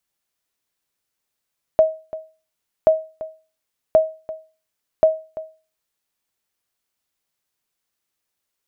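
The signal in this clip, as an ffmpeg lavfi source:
-f lavfi -i "aevalsrc='0.531*(sin(2*PI*635*mod(t,1.08))*exp(-6.91*mod(t,1.08)/0.34)+0.141*sin(2*PI*635*max(mod(t,1.08)-0.34,0))*exp(-6.91*max(mod(t,1.08)-0.34,0)/0.34))':d=4.32:s=44100"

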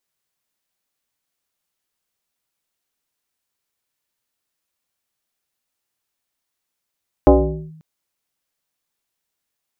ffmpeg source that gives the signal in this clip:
-f lavfi -i "aevalsrc='0.631*pow(10,-3*t/0.83)*sin(2*PI*158*t+2.8*clip(1-t/0.45,0,1)*sin(2*PI*1.39*158*t))':d=0.54:s=44100"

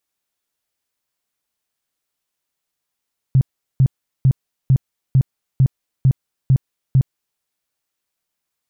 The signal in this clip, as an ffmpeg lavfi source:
-f lavfi -i "aevalsrc='0.376*sin(2*PI*132*mod(t,0.45))*lt(mod(t,0.45),8/132)':d=4.05:s=44100"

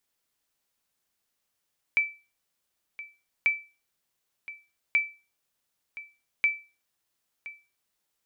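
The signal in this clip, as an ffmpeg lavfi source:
-f lavfi -i "aevalsrc='0.168*(sin(2*PI*2320*mod(t,1.49))*exp(-6.91*mod(t,1.49)/0.31)+0.141*sin(2*PI*2320*max(mod(t,1.49)-1.02,0))*exp(-6.91*max(mod(t,1.49)-1.02,0)/0.31))':d=5.96:s=44100"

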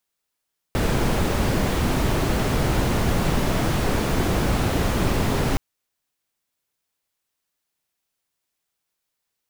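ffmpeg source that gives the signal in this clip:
-f lavfi -i "anoisesrc=c=brown:a=0.442:d=4.82:r=44100:seed=1"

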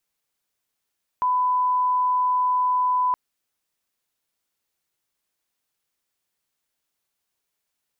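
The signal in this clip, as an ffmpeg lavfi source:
-f lavfi -i "sine=f=1000:d=1.92:r=44100,volume=0.06dB"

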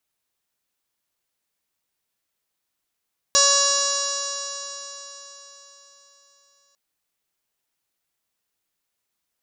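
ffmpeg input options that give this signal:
-f lavfi -i "aevalsrc='0.0631*pow(10,-3*t/4.17)*sin(2*PI*561.09*t)+0.075*pow(10,-3*t/4.17)*sin(2*PI*1122.72*t)+0.0422*pow(10,-3*t/4.17)*sin(2*PI*1685.42*t)+0.00668*pow(10,-3*t/4.17)*sin(2*PI*2249.74*t)+0.0335*pow(10,-3*t/4.17)*sin(2*PI*2816.2*t)+0.0188*pow(10,-3*t/4.17)*sin(2*PI*3385.33*t)+0.0794*pow(10,-3*t/4.17)*sin(2*PI*3957.67*t)+0.0501*pow(10,-3*t/4.17)*sin(2*PI*4533.72*t)+0.0794*pow(10,-3*t/4.17)*sin(2*PI*5114.02*t)+0.126*pow(10,-3*t/4.17)*sin(2*PI*5699.05*t)+0.0531*pow(10,-3*t/4.17)*sin(2*PI*6289.34*t)+0.1*pow(10,-3*t/4.17)*sin(2*PI*6885.36*t)+0.0141*pow(10,-3*t/4.17)*sin(2*PI*7487.61*t)+0.0282*pow(10,-3*t/4.17)*sin(2*PI*8096.56*t)':d=3.4:s=44100"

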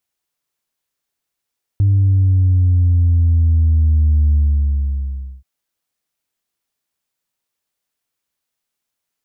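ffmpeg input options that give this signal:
-f lavfi -i "aevalsrc='0.316*clip((3.63-t)/1.09,0,1)*tanh(1*sin(2*PI*100*3.63/log(65/100)*(exp(log(65/100)*t/3.63)-1)))/tanh(1)':d=3.63:s=44100"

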